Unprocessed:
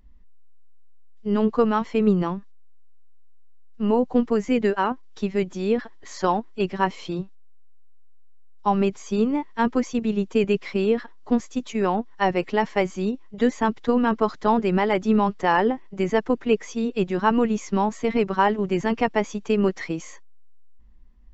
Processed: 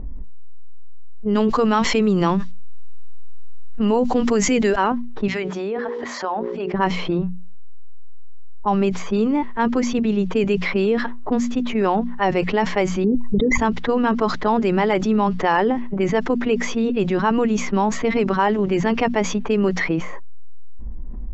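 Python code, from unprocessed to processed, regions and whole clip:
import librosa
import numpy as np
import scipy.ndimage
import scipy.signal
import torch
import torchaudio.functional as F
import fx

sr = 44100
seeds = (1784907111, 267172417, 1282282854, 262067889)

y = fx.chain(x, sr, fx.high_shelf(hz=2600.0, db=8.0),
    fx.env_flatten(amount_pct=50), at=(1.35, 4.76))
y = fx.chain(y, sr, fx.differentiator(),
    fx.hum_notches(base_hz=60, count=9),
    fx.env_flatten(amount_pct=70), at=(5.28, 6.74))
y = fx.chain(y, sr, fx.envelope_sharpen(power=3.0),
    fx.air_absorb(metres=290.0),
    fx.env_flatten(amount_pct=100), at=(13.04, 13.58))
y = fx.env_lowpass(y, sr, base_hz=620.0, full_db=-16.0)
y = fx.hum_notches(y, sr, base_hz=60, count=4)
y = fx.env_flatten(y, sr, amount_pct=70)
y = F.gain(torch.from_numpy(y), -1.5).numpy()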